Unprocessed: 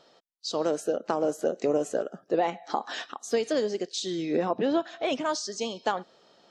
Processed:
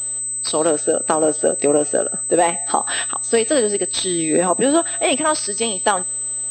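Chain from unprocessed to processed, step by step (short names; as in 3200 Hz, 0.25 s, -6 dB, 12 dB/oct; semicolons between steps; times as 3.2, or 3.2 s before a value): high shelf 2100 Hz +9 dB; buzz 120 Hz, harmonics 7, -60 dBFS -8 dB/oct; pulse-width modulation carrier 8100 Hz; gain +8.5 dB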